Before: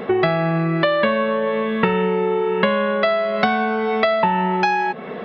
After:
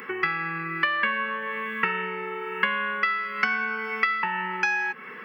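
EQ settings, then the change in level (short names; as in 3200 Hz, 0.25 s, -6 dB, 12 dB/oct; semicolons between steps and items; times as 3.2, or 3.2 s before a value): HPF 970 Hz 6 dB/oct; high shelf 2100 Hz +10 dB; fixed phaser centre 1600 Hz, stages 4; -2.5 dB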